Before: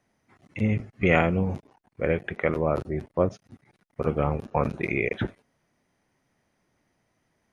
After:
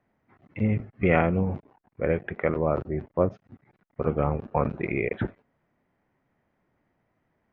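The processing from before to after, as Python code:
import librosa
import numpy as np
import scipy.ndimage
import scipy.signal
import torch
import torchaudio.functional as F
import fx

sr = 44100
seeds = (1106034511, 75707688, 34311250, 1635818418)

y = scipy.signal.sosfilt(scipy.signal.butter(2, 2000.0, 'lowpass', fs=sr, output='sos'), x)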